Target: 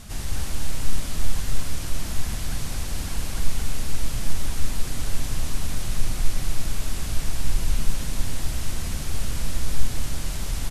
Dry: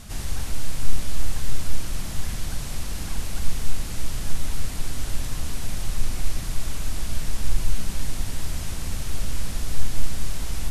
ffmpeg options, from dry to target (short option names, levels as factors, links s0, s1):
-af "aecho=1:1:224:0.631"